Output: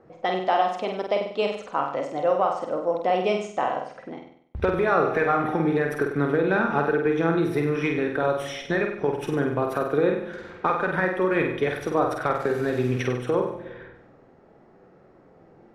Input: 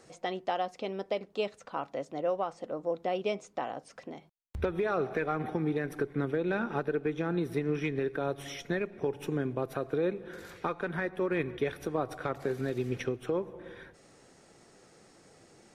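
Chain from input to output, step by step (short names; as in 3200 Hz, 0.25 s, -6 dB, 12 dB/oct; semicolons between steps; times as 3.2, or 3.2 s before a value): low-pass opened by the level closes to 1000 Hz, open at -31.5 dBFS; flutter echo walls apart 8.3 m, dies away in 0.63 s; dynamic EQ 1100 Hz, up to +6 dB, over -43 dBFS, Q 0.71; gain +4.5 dB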